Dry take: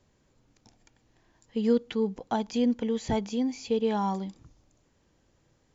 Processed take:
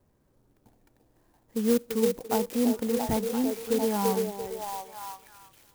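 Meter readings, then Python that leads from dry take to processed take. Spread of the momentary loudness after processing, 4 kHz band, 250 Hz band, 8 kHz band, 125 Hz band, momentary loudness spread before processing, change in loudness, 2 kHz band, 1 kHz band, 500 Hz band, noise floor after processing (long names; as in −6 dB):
12 LU, +1.5 dB, +0.5 dB, can't be measured, 0.0 dB, 6 LU, +1.0 dB, +2.5 dB, +1.0 dB, +2.5 dB, −68 dBFS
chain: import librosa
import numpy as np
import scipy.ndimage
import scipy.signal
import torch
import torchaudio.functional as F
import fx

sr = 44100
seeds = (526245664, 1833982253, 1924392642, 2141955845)

p1 = fx.env_lowpass(x, sr, base_hz=1800.0, full_db=-25.0)
p2 = p1 + fx.echo_stepped(p1, sr, ms=340, hz=440.0, octaves=0.7, feedback_pct=70, wet_db=-0.5, dry=0)
y = fx.clock_jitter(p2, sr, seeds[0], jitter_ms=0.081)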